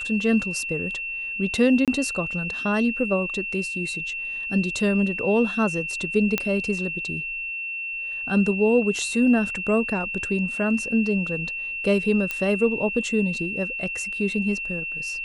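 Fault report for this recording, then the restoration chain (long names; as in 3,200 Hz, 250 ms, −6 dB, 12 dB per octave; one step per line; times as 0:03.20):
whistle 2,700 Hz −28 dBFS
0:01.85–0:01.88: drop-out 27 ms
0:06.38: click −8 dBFS
0:12.31: click −12 dBFS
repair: click removal
notch filter 2,700 Hz, Q 30
repair the gap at 0:01.85, 27 ms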